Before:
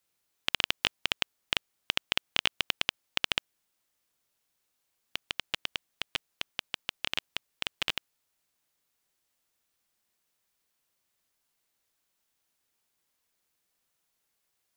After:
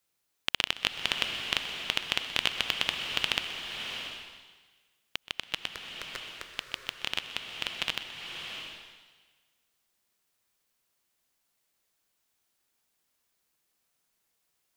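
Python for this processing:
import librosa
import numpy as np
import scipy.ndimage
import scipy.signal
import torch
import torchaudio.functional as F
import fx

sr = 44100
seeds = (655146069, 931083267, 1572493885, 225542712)

y = fx.fixed_phaser(x, sr, hz=800.0, stages=6, at=(5.67, 6.54))
y = y + 10.0 ** (-17.0 / 20.0) * np.pad(y, (int(126 * sr / 1000.0), 0))[:len(y)]
y = fx.rev_bloom(y, sr, seeds[0], attack_ms=700, drr_db=4.0)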